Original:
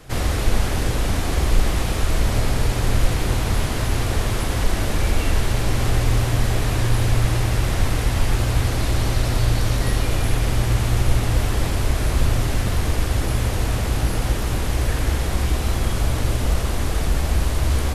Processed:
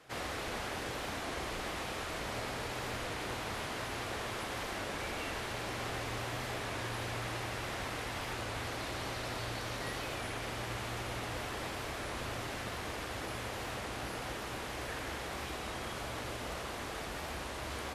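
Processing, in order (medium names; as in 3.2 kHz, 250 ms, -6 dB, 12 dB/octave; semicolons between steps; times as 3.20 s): high-pass 670 Hz 6 dB/octave; treble shelf 5.2 kHz -11 dB; warped record 33 1/3 rpm, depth 100 cents; trim -7.5 dB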